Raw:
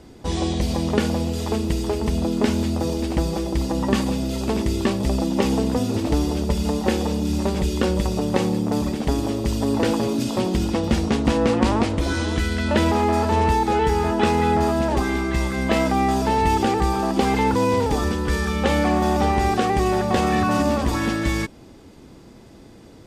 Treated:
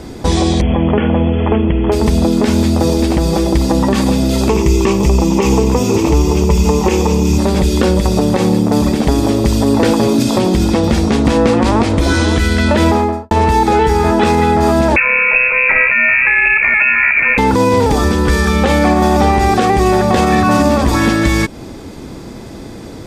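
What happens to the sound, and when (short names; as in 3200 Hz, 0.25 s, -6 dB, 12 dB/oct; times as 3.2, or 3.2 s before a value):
0.61–1.92 brick-wall FIR low-pass 3400 Hz
4.49–7.38 ripple EQ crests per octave 0.75, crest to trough 10 dB
12.81–13.31 studio fade out
14.96–17.38 inverted band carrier 2600 Hz
whole clip: notch 2900 Hz, Q 16; compressor 2:1, threshold -28 dBFS; maximiser +16.5 dB; gain -1 dB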